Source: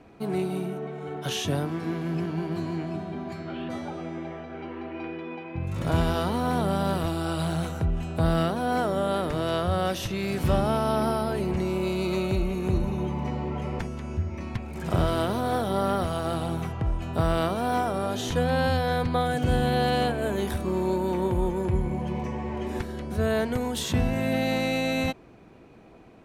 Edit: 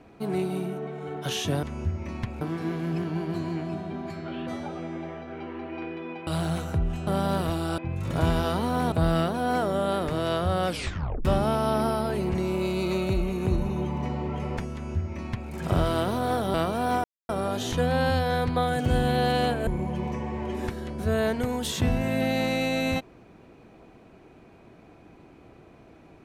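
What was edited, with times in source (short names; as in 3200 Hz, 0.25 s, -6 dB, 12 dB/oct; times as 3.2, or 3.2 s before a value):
5.49–6.63 swap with 7.34–8.14
9.89 tape stop 0.58 s
13.95–14.73 copy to 1.63
15.76–17.37 cut
17.87 insert silence 0.25 s
20.25–21.79 cut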